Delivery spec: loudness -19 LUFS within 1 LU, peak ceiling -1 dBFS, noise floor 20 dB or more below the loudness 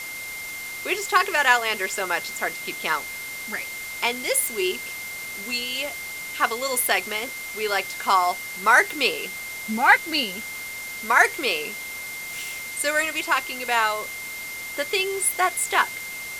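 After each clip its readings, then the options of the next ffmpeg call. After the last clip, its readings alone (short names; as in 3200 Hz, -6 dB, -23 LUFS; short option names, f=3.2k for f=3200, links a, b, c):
steady tone 2100 Hz; tone level -33 dBFS; noise floor -34 dBFS; noise floor target -44 dBFS; loudness -23.5 LUFS; peak -2.5 dBFS; loudness target -19.0 LUFS
-> -af "bandreject=f=2.1k:w=30"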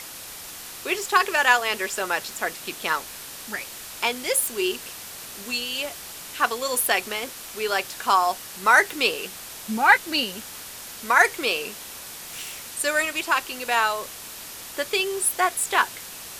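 steady tone none; noise floor -39 dBFS; noise floor target -43 dBFS
-> -af "afftdn=nr=6:nf=-39"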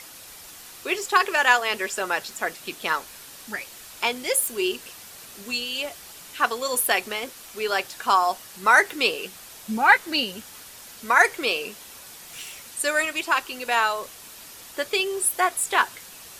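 noise floor -44 dBFS; loudness -23.0 LUFS; peak -2.5 dBFS; loudness target -19.0 LUFS
-> -af "volume=4dB,alimiter=limit=-1dB:level=0:latency=1"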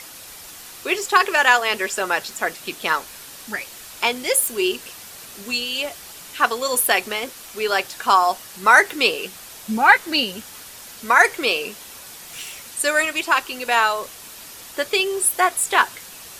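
loudness -19.5 LUFS; peak -1.0 dBFS; noise floor -40 dBFS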